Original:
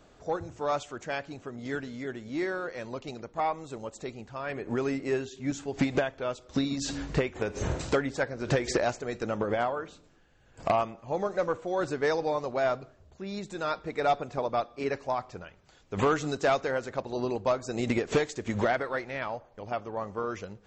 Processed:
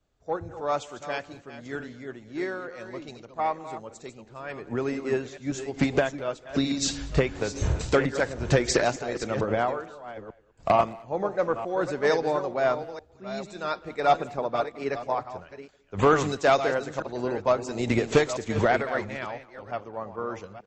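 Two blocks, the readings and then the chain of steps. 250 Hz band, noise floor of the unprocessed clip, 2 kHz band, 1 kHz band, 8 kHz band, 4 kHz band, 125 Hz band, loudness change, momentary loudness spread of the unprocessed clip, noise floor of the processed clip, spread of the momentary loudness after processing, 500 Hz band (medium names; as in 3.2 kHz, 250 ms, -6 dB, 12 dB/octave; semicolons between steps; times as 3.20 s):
+2.5 dB, -59 dBFS, +3.5 dB, +3.5 dB, +6.0 dB, +4.5 dB, +4.0 dB, +4.0 dB, 11 LU, -55 dBFS, 17 LU, +3.5 dB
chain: chunks repeated in reverse 448 ms, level -8 dB; speakerphone echo 210 ms, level -17 dB; three bands expanded up and down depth 70%; trim +2 dB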